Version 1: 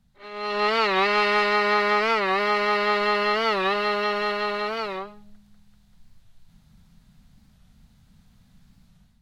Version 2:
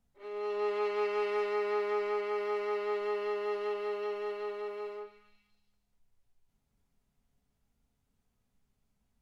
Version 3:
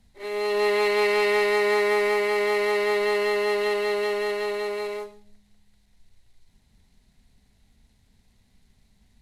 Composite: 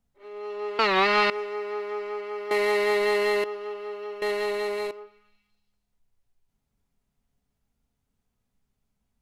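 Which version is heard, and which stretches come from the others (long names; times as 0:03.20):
2
0:00.79–0:01.30: punch in from 1
0:02.51–0:03.44: punch in from 3
0:04.22–0:04.91: punch in from 3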